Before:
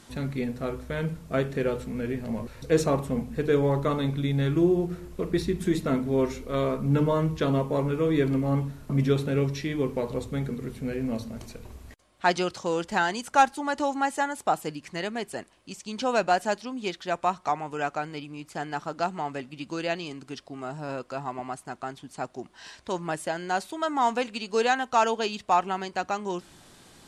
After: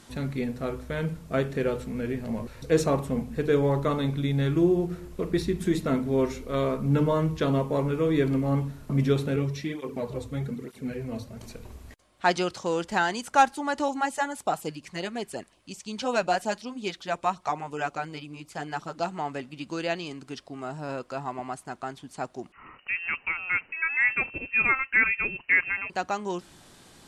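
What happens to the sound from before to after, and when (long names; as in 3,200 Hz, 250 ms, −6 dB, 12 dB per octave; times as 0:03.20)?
0:09.36–0:11.43: through-zero flanger with one copy inverted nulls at 1.1 Hz, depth 5.7 ms
0:13.88–0:19.12: auto-filter notch sine 5.5 Hz 280–1,900 Hz
0:22.52–0:25.90: voice inversion scrambler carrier 2,900 Hz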